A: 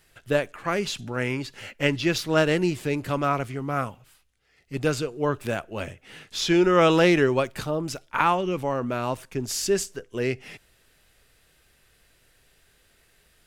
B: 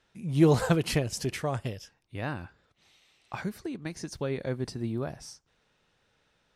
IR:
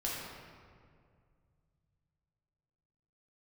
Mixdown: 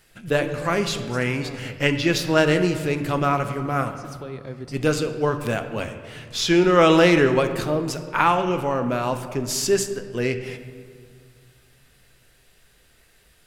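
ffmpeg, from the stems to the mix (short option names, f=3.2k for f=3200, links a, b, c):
-filter_complex "[0:a]bandreject=f=96.77:t=h:w=4,bandreject=f=193.54:t=h:w=4,bandreject=f=290.31:t=h:w=4,bandreject=f=387.08:t=h:w=4,bandreject=f=483.85:t=h:w=4,bandreject=f=580.62:t=h:w=4,bandreject=f=677.39:t=h:w=4,bandreject=f=774.16:t=h:w=4,bandreject=f=870.93:t=h:w=4,bandreject=f=967.7:t=h:w=4,bandreject=f=1.06447k:t=h:w=4,bandreject=f=1.16124k:t=h:w=4,bandreject=f=1.25801k:t=h:w=4,bandreject=f=1.35478k:t=h:w=4,bandreject=f=1.45155k:t=h:w=4,bandreject=f=1.54832k:t=h:w=4,bandreject=f=1.64509k:t=h:w=4,bandreject=f=1.74186k:t=h:w=4,bandreject=f=1.83863k:t=h:w=4,bandreject=f=1.9354k:t=h:w=4,bandreject=f=2.03217k:t=h:w=4,bandreject=f=2.12894k:t=h:w=4,bandreject=f=2.22571k:t=h:w=4,bandreject=f=2.32248k:t=h:w=4,bandreject=f=2.41925k:t=h:w=4,bandreject=f=2.51602k:t=h:w=4,bandreject=f=2.61279k:t=h:w=4,bandreject=f=2.70956k:t=h:w=4,bandreject=f=2.80633k:t=h:w=4,bandreject=f=2.9031k:t=h:w=4,bandreject=f=2.99987k:t=h:w=4,bandreject=f=3.09664k:t=h:w=4,bandreject=f=3.19341k:t=h:w=4,bandreject=f=3.29018k:t=h:w=4,bandreject=f=3.38695k:t=h:w=4,bandreject=f=3.48372k:t=h:w=4,bandreject=f=3.58049k:t=h:w=4,volume=1.5dB,asplit=3[a][b][c];[b]volume=-10.5dB[d];[1:a]acrossover=split=480|3000[e][f][g];[f]acompressor=threshold=-37dB:ratio=6[h];[e][h][g]amix=inputs=3:normalize=0,volume=-3.5dB,asplit=2[i][j];[j]volume=-16dB[k];[c]apad=whole_len=288942[l];[i][l]sidechaincompress=threshold=-32dB:ratio=8:attack=16:release=309[m];[2:a]atrim=start_sample=2205[n];[d][k]amix=inputs=2:normalize=0[o];[o][n]afir=irnorm=-1:irlink=0[p];[a][m][p]amix=inputs=3:normalize=0"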